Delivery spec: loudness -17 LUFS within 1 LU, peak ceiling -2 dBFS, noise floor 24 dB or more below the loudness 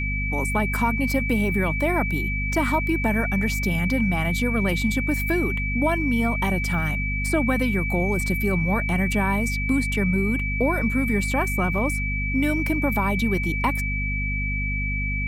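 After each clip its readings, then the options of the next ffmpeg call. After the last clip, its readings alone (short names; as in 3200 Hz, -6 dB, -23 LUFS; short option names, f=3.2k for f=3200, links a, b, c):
hum 50 Hz; harmonics up to 250 Hz; hum level -24 dBFS; steady tone 2300 Hz; tone level -27 dBFS; loudness -23.0 LUFS; peak -10.0 dBFS; loudness target -17.0 LUFS
-> -af "bandreject=f=50:t=h:w=6,bandreject=f=100:t=h:w=6,bandreject=f=150:t=h:w=6,bandreject=f=200:t=h:w=6,bandreject=f=250:t=h:w=6"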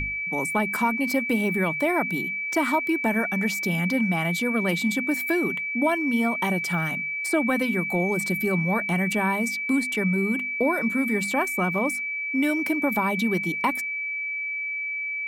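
hum none; steady tone 2300 Hz; tone level -27 dBFS
-> -af "bandreject=f=2.3k:w=30"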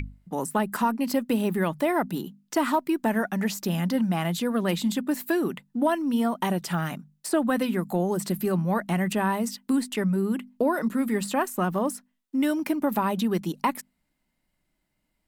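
steady tone none; loudness -26.5 LUFS; peak -13.0 dBFS; loudness target -17.0 LUFS
-> -af "volume=9.5dB"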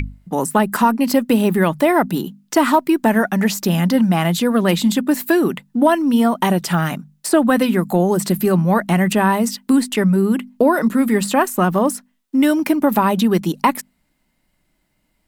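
loudness -17.0 LUFS; peak -3.5 dBFS; noise floor -67 dBFS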